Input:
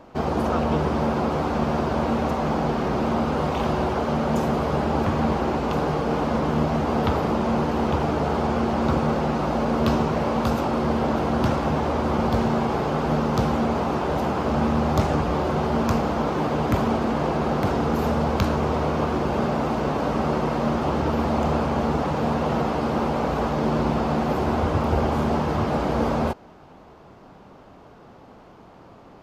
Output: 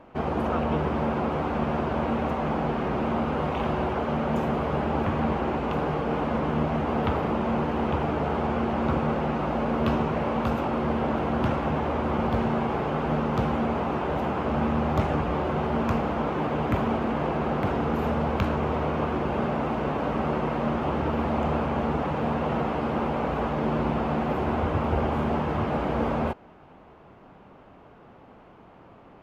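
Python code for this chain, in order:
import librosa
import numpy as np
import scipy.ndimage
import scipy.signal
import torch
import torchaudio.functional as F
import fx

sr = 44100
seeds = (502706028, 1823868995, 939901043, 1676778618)

y = fx.high_shelf_res(x, sr, hz=3600.0, db=-8.0, q=1.5)
y = F.gain(torch.from_numpy(y), -3.5).numpy()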